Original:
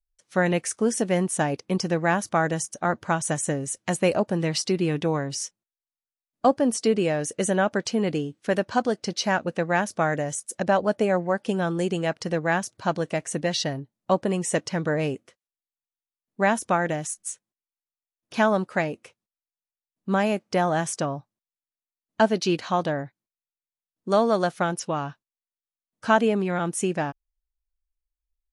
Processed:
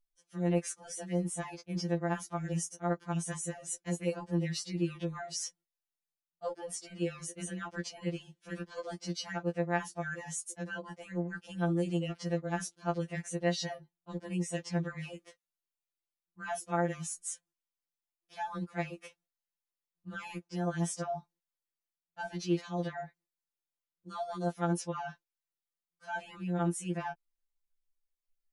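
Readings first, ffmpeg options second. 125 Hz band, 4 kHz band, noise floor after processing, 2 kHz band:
-6.5 dB, -11.0 dB, under -85 dBFS, -13.0 dB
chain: -af "areverse,acompressor=threshold=-32dB:ratio=5,areverse,afftfilt=real='re*2.83*eq(mod(b,8),0)':imag='im*2.83*eq(mod(b,8),0)':win_size=2048:overlap=0.75"

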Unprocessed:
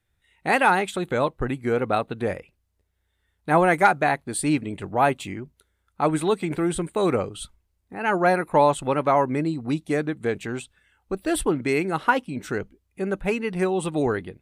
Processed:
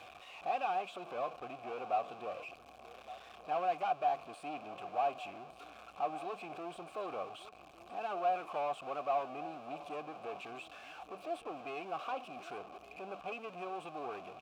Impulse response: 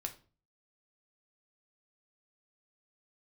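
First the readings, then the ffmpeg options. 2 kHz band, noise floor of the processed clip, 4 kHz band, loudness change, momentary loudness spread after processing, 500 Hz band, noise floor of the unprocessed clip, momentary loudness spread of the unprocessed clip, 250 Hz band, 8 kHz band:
-21.0 dB, -56 dBFS, -14.0 dB, -16.0 dB, 16 LU, -16.5 dB, -73 dBFS, 13 LU, -25.0 dB, under -25 dB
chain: -filter_complex "[0:a]aeval=exprs='val(0)+0.5*0.0562*sgn(val(0))':c=same,highshelf=f=5.6k:g=9,aeval=exprs='(tanh(11.2*val(0)+0.55)-tanh(0.55))/11.2':c=same,asplit=3[a][b][c];[a]bandpass=f=730:t=q:w=8,volume=0dB[d];[b]bandpass=f=1.09k:t=q:w=8,volume=-6dB[e];[c]bandpass=f=2.44k:t=q:w=8,volume=-9dB[f];[d][e][f]amix=inputs=3:normalize=0,equalizer=f=11k:w=0.82:g=-6.5,aecho=1:1:1163:0.15,volume=-2dB"

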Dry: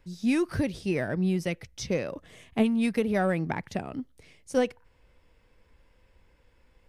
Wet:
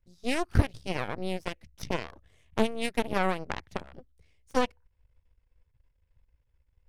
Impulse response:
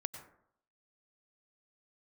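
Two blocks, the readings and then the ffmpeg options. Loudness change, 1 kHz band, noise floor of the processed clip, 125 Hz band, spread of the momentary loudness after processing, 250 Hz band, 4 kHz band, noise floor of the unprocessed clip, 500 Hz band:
-3.0 dB, +3.0 dB, -73 dBFS, -1.0 dB, 12 LU, -7.5 dB, +3.0 dB, -64 dBFS, -3.5 dB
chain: -af "lowshelf=f=110:t=q:w=1.5:g=13,aeval=exprs='0.316*(cos(1*acos(clip(val(0)/0.316,-1,1)))-cos(1*PI/2))+0.0501*(cos(7*acos(clip(val(0)/0.316,-1,1)))-cos(7*PI/2))+0.0251*(cos(8*acos(clip(val(0)/0.316,-1,1)))-cos(8*PI/2))':c=same"

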